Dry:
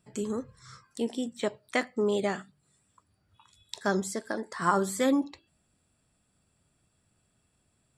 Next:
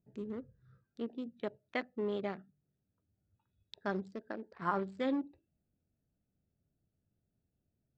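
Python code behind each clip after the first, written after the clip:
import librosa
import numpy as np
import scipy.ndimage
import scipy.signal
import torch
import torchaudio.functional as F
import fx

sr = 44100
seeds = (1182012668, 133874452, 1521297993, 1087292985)

y = fx.wiener(x, sr, points=41)
y = scipy.signal.sosfilt(scipy.signal.butter(4, 4300.0, 'lowpass', fs=sr, output='sos'), y)
y = y * librosa.db_to_amplitude(-8.0)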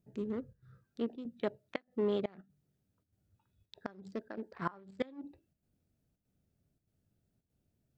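y = fx.chopper(x, sr, hz=1.6, depth_pct=60, duty_pct=85)
y = fx.gate_flip(y, sr, shuts_db=-25.0, range_db=-25)
y = y * librosa.db_to_amplitude(4.0)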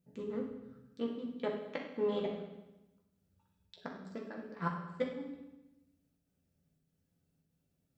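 y = fx.low_shelf(x, sr, hz=140.0, db=-6.0)
y = fx.rev_fdn(y, sr, rt60_s=0.99, lf_ratio=1.25, hf_ratio=0.95, size_ms=35.0, drr_db=-1.5)
y = y * librosa.db_to_amplitude(-3.0)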